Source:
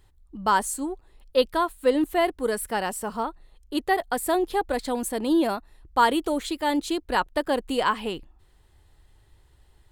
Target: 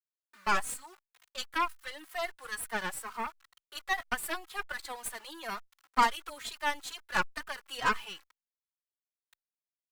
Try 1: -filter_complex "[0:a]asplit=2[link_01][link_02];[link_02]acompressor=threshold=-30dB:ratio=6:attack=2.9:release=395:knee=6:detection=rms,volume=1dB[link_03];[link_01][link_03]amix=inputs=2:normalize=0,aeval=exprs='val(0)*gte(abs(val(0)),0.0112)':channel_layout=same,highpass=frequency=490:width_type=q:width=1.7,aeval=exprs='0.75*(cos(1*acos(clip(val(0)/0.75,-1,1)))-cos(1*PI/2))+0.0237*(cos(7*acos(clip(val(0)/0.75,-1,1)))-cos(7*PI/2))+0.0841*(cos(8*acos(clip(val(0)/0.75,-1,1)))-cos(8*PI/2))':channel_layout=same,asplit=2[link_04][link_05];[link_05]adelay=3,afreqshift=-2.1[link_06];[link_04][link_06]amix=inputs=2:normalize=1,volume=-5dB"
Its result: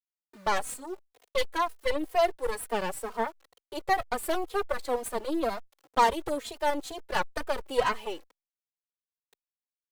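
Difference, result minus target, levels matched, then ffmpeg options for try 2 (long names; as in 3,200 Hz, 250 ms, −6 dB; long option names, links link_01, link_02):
500 Hz band +10.0 dB
-filter_complex "[0:a]asplit=2[link_01][link_02];[link_02]acompressor=threshold=-30dB:ratio=6:attack=2.9:release=395:knee=6:detection=rms,volume=1dB[link_03];[link_01][link_03]amix=inputs=2:normalize=0,aeval=exprs='val(0)*gte(abs(val(0)),0.0112)':channel_layout=same,highpass=frequency=1300:width_type=q:width=1.7,aeval=exprs='0.75*(cos(1*acos(clip(val(0)/0.75,-1,1)))-cos(1*PI/2))+0.0237*(cos(7*acos(clip(val(0)/0.75,-1,1)))-cos(7*PI/2))+0.0841*(cos(8*acos(clip(val(0)/0.75,-1,1)))-cos(8*PI/2))':channel_layout=same,asplit=2[link_04][link_05];[link_05]adelay=3,afreqshift=-2.1[link_06];[link_04][link_06]amix=inputs=2:normalize=1,volume=-5dB"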